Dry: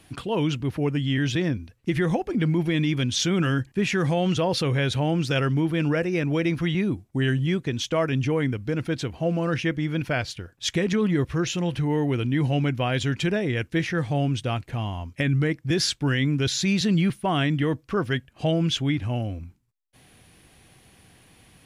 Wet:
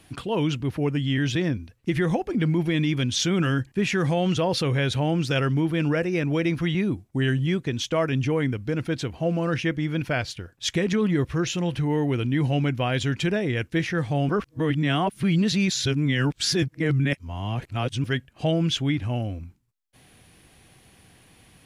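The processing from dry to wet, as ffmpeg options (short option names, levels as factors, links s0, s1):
-filter_complex "[0:a]asplit=3[s0][s1][s2];[s0]atrim=end=14.292[s3];[s1]atrim=start=14.288:end=18.042,asetpts=PTS-STARTPTS,areverse[s4];[s2]atrim=start=18.038[s5];[s3][s4]acrossfade=d=0.004:c1=hsin:c2=hsin[s6];[s6][s5]acrossfade=d=0.004:c1=hsin:c2=hsin"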